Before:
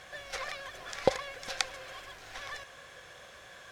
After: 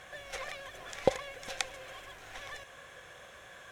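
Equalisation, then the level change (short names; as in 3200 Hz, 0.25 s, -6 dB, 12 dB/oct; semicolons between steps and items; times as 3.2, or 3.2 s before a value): dynamic EQ 1300 Hz, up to -5 dB, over -49 dBFS, Q 1.4; bell 4700 Hz -8 dB 0.51 oct; 0.0 dB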